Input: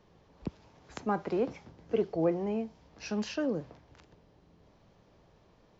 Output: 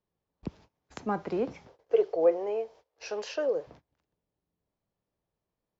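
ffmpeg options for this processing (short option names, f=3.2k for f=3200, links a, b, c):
-filter_complex "[0:a]agate=range=-24dB:threshold=-52dB:ratio=16:detection=peak,asettb=1/sr,asplit=3[a][b][c];[a]atrim=end=1.674[d];[b]atrim=start=1.67:end=3.67,asetpts=PTS-STARTPTS,afade=t=in:d=0.004:c=qsin,afade=t=out:st=1.996:d=0.004:c=qsin,lowshelf=f=320:t=q:w=3:g=-13.5[e];[c]atrim=start=3.666[f];[d][e]acrossfade=d=0.004:c1=hsin:c2=qsin[g];[g][f]acrossfade=d=0.004:c1=qsin:c2=hsin"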